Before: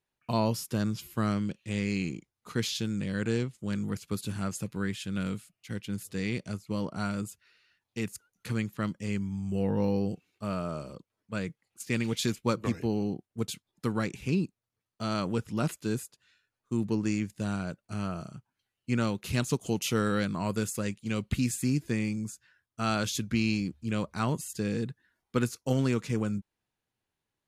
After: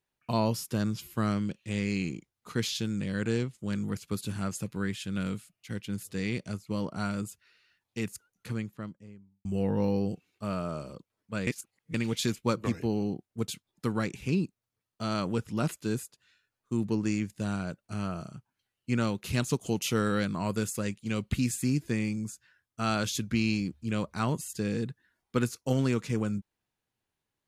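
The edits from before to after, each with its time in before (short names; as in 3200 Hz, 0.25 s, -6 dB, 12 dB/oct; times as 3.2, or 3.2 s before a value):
8.09–9.45 studio fade out
11.47–11.94 reverse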